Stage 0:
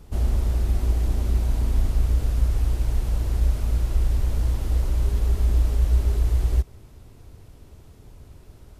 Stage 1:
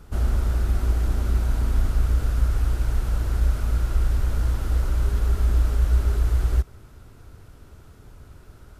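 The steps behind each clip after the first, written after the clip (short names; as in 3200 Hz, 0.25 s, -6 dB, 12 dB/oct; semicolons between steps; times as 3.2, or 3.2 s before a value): bell 1400 Hz +10.5 dB 0.49 oct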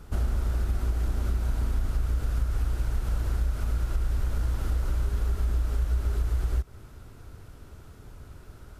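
compressor 4:1, threshold -23 dBFS, peak gain reduction 8 dB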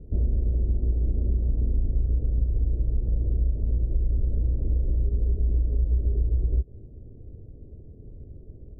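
steep low-pass 530 Hz 36 dB/oct; gain +3 dB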